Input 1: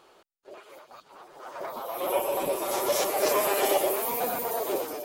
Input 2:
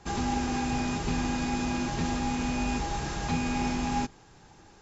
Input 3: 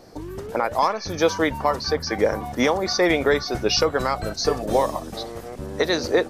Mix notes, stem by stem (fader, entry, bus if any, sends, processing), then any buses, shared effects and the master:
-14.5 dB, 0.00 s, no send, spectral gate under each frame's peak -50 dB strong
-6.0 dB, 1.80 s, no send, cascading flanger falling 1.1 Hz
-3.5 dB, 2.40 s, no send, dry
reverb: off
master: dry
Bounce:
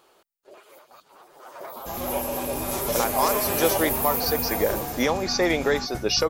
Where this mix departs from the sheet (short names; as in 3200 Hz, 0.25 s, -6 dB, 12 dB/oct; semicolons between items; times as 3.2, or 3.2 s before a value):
stem 1 -14.5 dB -> -2.5 dB; stem 2: missing cascading flanger falling 1.1 Hz; master: extra high shelf 9300 Hz +11 dB